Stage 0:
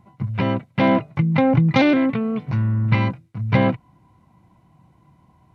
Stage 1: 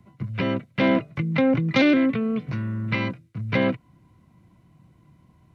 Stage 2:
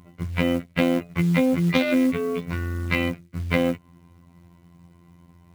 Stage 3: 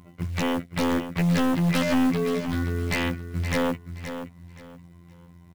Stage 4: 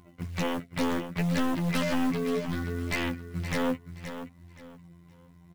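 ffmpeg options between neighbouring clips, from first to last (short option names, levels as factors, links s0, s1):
-filter_complex "[0:a]equalizer=f=850:t=o:w=0.6:g=-11.5,acrossover=split=220|330|980[s0][s1][s2][s3];[s0]acompressor=threshold=0.0316:ratio=6[s4];[s4][s1][s2][s3]amix=inputs=4:normalize=0"
-af "afftfilt=real='hypot(re,im)*cos(PI*b)':imag='0':win_size=2048:overlap=0.75,acompressor=threshold=0.0708:ratio=16,acrusher=bits=6:mode=log:mix=0:aa=0.000001,volume=2.37"
-filter_complex "[0:a]aeval=exprs='0.133*(abs(mod(val(0)/0.133+3,4)-2)-1)':c=same,asplit=2[s0][s1];[s1]aecho=0:1:523|1046|1569:0.316|0.0791|0.0198[s2];[s0][s2]amix=inputs=2:normalize=0"
-af "flanger=delay=2.6:depth=5.3:regen=46:speed=0.67:shape=triangular"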